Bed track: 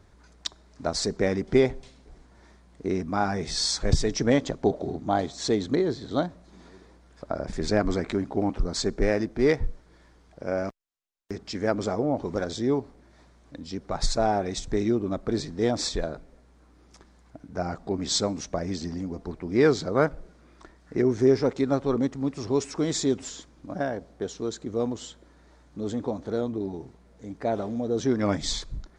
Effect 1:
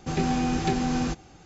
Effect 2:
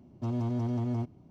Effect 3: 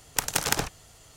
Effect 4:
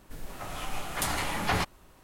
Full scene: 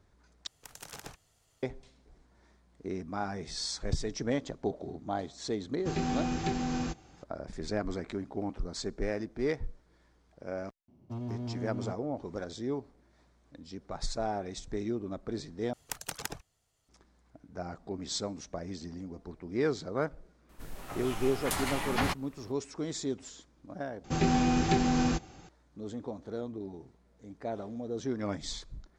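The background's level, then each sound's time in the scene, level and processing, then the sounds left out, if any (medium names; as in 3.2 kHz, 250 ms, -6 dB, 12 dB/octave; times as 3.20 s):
bed track -9.5 dB
0.47 s: replace with 3 -17 dB + peak limiter -11.5 dBFS
5.79 s: add 1 -6.5 dB
10.88 s: add 2 -6.5 dB
15.73 s: replace with 3 -12 dB + reverb removal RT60 2 s
20.49 s: add 4 -3 dB
24.04 s: replace with 1 -1 dB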